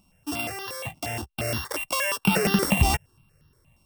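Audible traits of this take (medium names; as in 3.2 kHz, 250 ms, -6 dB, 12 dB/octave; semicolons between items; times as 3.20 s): a buzz of ramps at a fixed pitch in blocks of 16 samples; notches that jump at a steady rate 8.5 Hz 460–2300 Hz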